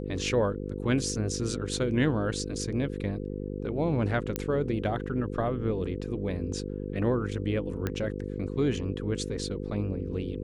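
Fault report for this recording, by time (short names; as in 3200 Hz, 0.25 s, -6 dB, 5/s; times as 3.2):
buzz 50 Hz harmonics 10 -35 dBFS
4.36 pop -13 dBFS
7.87 pop -16 dBFS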